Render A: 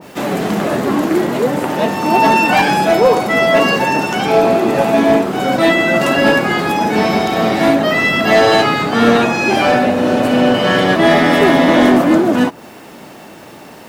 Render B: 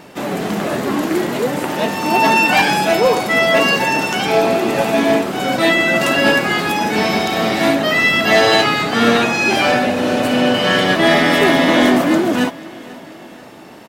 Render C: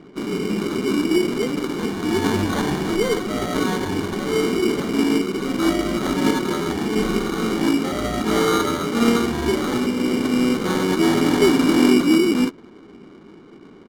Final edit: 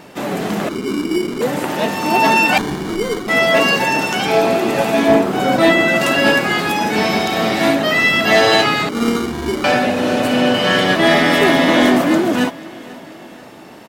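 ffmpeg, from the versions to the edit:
-filter_complex "[2:a]asplit=3[a][b][c];[1:a]asplit=5[d][e][f][g][h];[d]atrim=end=0.692[i];[a]atrim=start=0.688:end=1.412[j];[e]atrim=start=1.408:end=2.582[k];[b]atrim=start=2.578:end=3.282[l];[f]atrim=start=3.278:end=5.082[m];[0:a]atrim=start=5.078:end=5.882[n];[g]atrim=start=5.878:end=8.892[o];[c]atrim=start=8.888:end=9.642[p];[h]atrim=start=9.638[q];[i][j]acrossfade=d=0.004:c1=hsin:c2=hsin[r];[r][k]acrossfade=d=0.004:c1=hsin:c2=hsin[s];[s][l]acrossfade=d=0.004:c1=hsin:c2=hsin[t];[t][m]acrossfade=d=0.004:c1=hsin:c2=hsin[u];[u][n]acrossfade=d=0.004:c1=hsin:c2=hsin[v];[v][o]acrossfade=d=0.004:c1=hsin:c2=hsin[w];[w][p]acrossfade=d=0.004:c1=hsin:c2=hsin[x];[x][q]acrossfade=d=0.004:c1=hsin:c2=hsin"

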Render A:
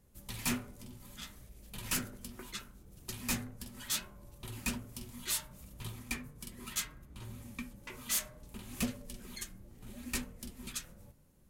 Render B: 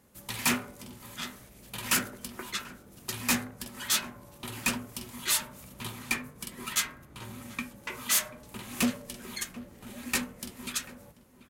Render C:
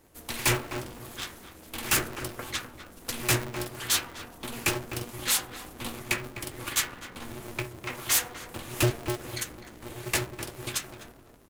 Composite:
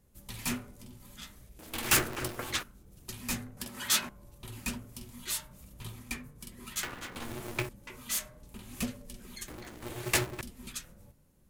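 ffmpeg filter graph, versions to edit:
-filter_complex "[2:a]asplit=3[a][b][c];[0:a]asplit=5[d][e][f][g][h];[d]atrim=end=1.592[i];[a]atrim=start=1.588:end=2.632[j];[e]atrim=start=2.628:end=3.572[k];[1:a]atrim=start=3.568:end=4.092[l];[f]atrim=start=4.088:end=6.832[m];[b]atrim=start=6.828:end=7.692[n];[g]atrim=start=7.688:end=9.482[o];[c]atrim=start=9.478:end=10.412[p];[h]atrim=start=10.408[q];[i][j]acrossfade=d=0.004:c1=hsin:c2=hsin[r];[r][k]acrossfade=d=0.004:c1=hsin:c2=hsin[s];[s][l]acrossfade=d=0.004:c1=hsin:c2=hsin[t];[t][m]acrossfade=d=0.004:c1=hsin:c2=hsin[u];[u][n]acrossfade=d=0.004:c1=hsin:c2=hsin[v];[v][o]acrossfade=d=0.004:c1=hsin:c2=hsin[w];[w][p]acrossfade=d=0.004:c1=hsin:c2=hsin[x];[x][q]acrossfade=d=0.004:c1=hsin:c2=hsin"

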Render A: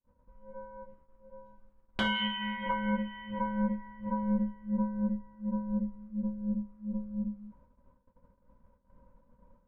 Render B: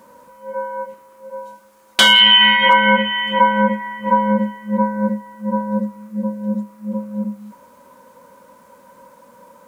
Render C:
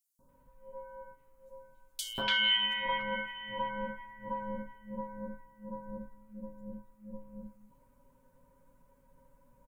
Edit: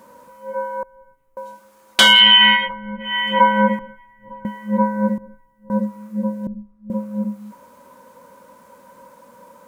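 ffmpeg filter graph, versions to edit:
-filter_complex "[2:a]asplit=3[a][b][c];[0:a]asplit=2[d][e];[1:a]asplit=6[f][g][h][i][j][k];[f]atrim=end=0.832[l];[a]atrim=start=0.828:end=1.372[m];[g]atrim=start=1.368:end=2.7[n];[d]atrim=start=2.54:end=3.15[o];[h]atrim=start=2.99:end=3.792[p];[b]atrim=start=3.788:end=4.452[q];[i]atrim=start=4.448:end=5.182[r];[c]atrim=start=5.178:end=5.702[s];[j]atrim=start=5.698:end=6.472[t];[e]atrim=start=6.468:end=6.902[u];[k]atrim=start=6.898[v];[l][m]acrossfade=d=0.004:c1=hsin:c2=hsin[w];[w][n]acrossfade=d=0.004:c1=hsin:c2=hsin[x];[x][o]acrossfade=d=0.16:c1=tri:c2=tri[y];[y][p]acrossfade=d=0.16:c1=tri:c2=tri[z];[z][q]acrossfade=d=0.004:c1=hsin:c2=hsin[aa];[aa][r]acrossfade=d=0.004:c1=hsin:c2=hsin[ab];[ab][s]acrossfade=d=0.004:c1=hsin:c2=hsin[ac];[ac][t]acrossfade=d=0.004:c1=hsin:c2=hsin[ad];[ad][u]acrossfade=d=0.004:c1=hsin:c2=hsin[ae];[ae][v]acrossfade=d=0.004:c1=hsin:c2=hsin"

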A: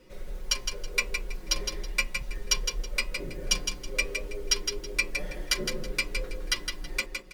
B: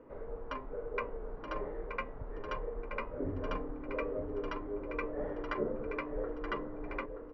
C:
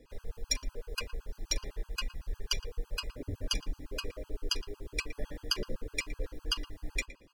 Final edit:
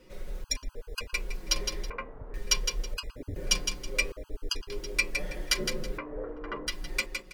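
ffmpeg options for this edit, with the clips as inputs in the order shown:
-filter_complex "[2:a]asplit=3[a][b][c];[1:a]asplit=2[d][e];[0:a]asplit=6[f][g][h][i][j][k];[f]atrim=end=0.442[l];[a]atrim=start=0.438:end=1.142[m];[g]atrim=start=1.138:end=1.902[n];[d]atrim=start=1.898:end=2.342[o];[h]atrim=start=2.338:end=2.942[p];[b]atrim=start=2.938:end=3.362[q];[i]atrim=start=3.358:end=4.122[r];[c]atrim=start=4.118:end=4.702[s];[j]atrim=start=4.698:end=5.982[t];[e]atrim=start=5.978:end=6.672[u];[k]atrim=start=6.668[v];[l][m]acrossfade=d=0.004:c1=hsin:c2=hsin[w];[w][n]acrossfade=d=0.004:c1=hsin:c2=hsin[x];[x][o]acrossfade=d=0.004:c1=hsin:c2=hsin[y];[y][p]acrossfade=d=0.004:c1=hsin:c2=hsin[z];[z][q]acrossfade=d=0.004:c1=hsin:c2=hsin[aa];[aa][r]acrossfade=d=0.004:c1=hsin:c2=hsin[ab];[ab][s]acrossfade=d=0.004:c1=hsin:c2=hsin[ac];[ac][t]acrossfade=d=0.004:c1=hsin:c2=hsin[ad];[ad][u]acrossfade=d=0.004:c1=hsin:c2=hsin[ae];[ae][v]acrossfade=d=0.004:c1=hsin:c2=hsin"

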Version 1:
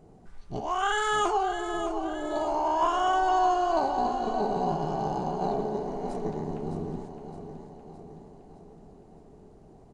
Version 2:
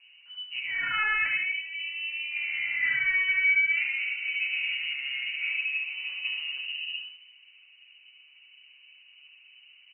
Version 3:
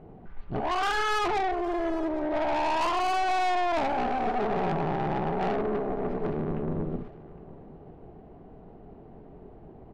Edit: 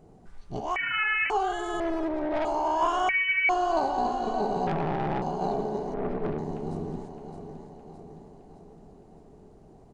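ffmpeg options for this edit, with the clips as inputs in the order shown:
-filter_complex "[1:a]asplit=2[a][b];[2:a]asplit=3[c][d][e];[0:a]asplit=6[f][g][h][i][j][k];[f]atrim=end=0.762[l];[a]atrim=start=0.758:end=1.302[m];[g]atrim=start=1.298:end=1.802[n];[c]atrim=start=1.798:end=2.452[o];[h]atrim=start=2.448:end=3.092[p];[b]atrim=start=3.088:end=3.492[q];[i]atrim=start=3.488:end=4.672[r];[d]atrim=start=4.668:end=5.222[s];[j]atrim=start=5.218:end=5.942[t];[e]atrim=start=5.938:end=6.382[u];[k]atrim=start=6.378[v];[l][m]acrossfade=d=0.004:c1=hsin:c2=hsin[w];[w][n]acrossfade=d=0.004:c1=hsin:c2=hsin[x];[x][o]acrossfade=d=0.004:c1=hsin:c2=hsin[y];[y][p]acrossfade=d=0.004:c1=hsin:c2=hsin[z];[z][q]acrossfade=d=0.004:c1=hsin:c2=hsin[aa];[aa][r]acrossfade=d=0.004:c1=hsin:c2=hsin[ab];[ab][s]acrossfade=d=0.004:c1=hsin:c2=hsin[ac];[ac][t]acrossfade=d=0.004:c1=hsin:c2=hsin[ad];[ad][u]acrossfade=d=0.004:c1=hsin:c2=hsin[ae];[ae][v]acrossfade=d=0.004:c1=hsin:c2=hsin"

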